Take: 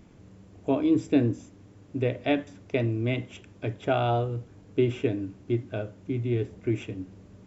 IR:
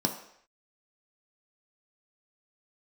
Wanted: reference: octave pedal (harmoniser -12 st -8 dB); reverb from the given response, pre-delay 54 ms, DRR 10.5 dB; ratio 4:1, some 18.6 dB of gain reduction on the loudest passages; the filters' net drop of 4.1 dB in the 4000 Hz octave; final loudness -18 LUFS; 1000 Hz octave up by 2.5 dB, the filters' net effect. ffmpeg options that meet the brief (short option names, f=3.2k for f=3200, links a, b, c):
-filter_complex "[0:a]equalizer=f=1k:t=o:g=4.5,equalizer=f=4k:t=o:g=-6,acompressor=threshold=-41dB:ratio=4,asplit=2[a][b];[1:a]atrim=start_sample=2205,adelay=54[c];[b][c]afir=irnorm=-1:irlink=0,volume=-18dB[d];[a][d]amix=inputs=2:normalize=0,asplit=2[e][f];[f]asetrate=22050,aresample=44100,atempo=2,volume=-8dB[g];[e][g]amix=inputs=2:normalize=0,volume=24dB"